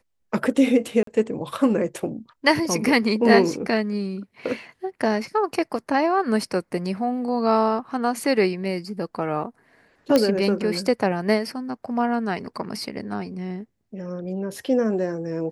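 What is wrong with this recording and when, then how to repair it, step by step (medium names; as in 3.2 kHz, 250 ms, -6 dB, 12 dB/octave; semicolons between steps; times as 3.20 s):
1.03–1.07 s: dropout 43 ms
10.16 s: pop -6 dBFS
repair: de-click; interpolate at 1.03 s, 43 ms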